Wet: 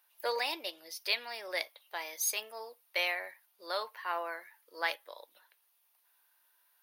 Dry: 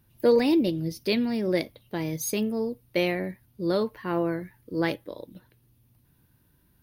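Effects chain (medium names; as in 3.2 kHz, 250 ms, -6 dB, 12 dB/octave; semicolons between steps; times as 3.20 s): high-pass 750 Hz 24 dB/octave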